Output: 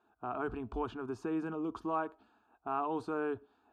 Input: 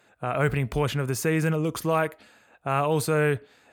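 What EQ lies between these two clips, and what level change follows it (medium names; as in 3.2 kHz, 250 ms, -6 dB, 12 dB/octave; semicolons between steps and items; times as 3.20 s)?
low-pass 2 kHz 12 dB/octave; static phaser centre 540 Hz, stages 6; -6.0 dB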